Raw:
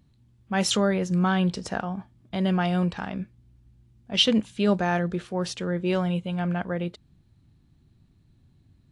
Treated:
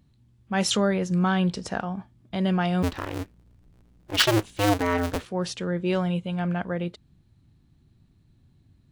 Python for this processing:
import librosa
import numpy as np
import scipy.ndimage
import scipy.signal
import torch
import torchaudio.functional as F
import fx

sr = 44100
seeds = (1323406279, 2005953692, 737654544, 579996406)

y = fx.cycle_switch(x, sr, every=2, mode='inverted', at=(2.82, 5.25), fade=0.02)